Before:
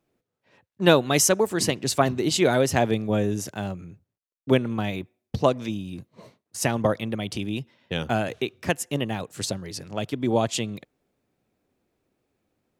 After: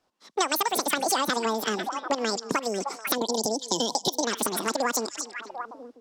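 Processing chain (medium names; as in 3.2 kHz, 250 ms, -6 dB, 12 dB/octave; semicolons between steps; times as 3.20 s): on a send: repeats whose band climbs or falls 527 ms, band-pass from 3 kHz, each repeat -1.4 oct, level -11 dB; on the sum: time-frequency box 6.72–9.04 s, 480–1400 Hz -27 dB; boxcar filter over 4 samples; compression 5:1, threshold -32 dBFS, peak gain reduction 18.5 dB; peaking EQ 2.5 kHz +6.5 dB 1.5 oct; level rider gain up to 8 dB; wide varispeed 2.13×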